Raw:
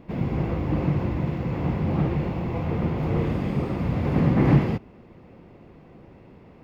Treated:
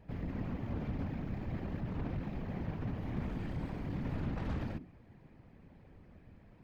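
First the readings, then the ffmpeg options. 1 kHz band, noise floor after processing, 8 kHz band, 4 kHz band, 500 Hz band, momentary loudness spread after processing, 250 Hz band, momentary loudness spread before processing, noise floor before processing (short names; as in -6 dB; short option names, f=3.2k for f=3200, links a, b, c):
-15.5 dB, -59 dBFS, n/a, -12.5 dB, -17.0 dB, 21 LU, -15.0 dB, 8 LU, -50 dBFS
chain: -af "aeval=exprs='(tanh(25.1*val(0)+0.45)-tanh(0.45))/25.1':c=same,afreqshift=-250,afftfilt=real='hypot(re,im)*cos(2*PI*random(0))':imag='hypot(re,im)*sin(2*PI*random(1))':win_size=512:overlap=0.75,volume=-1dB"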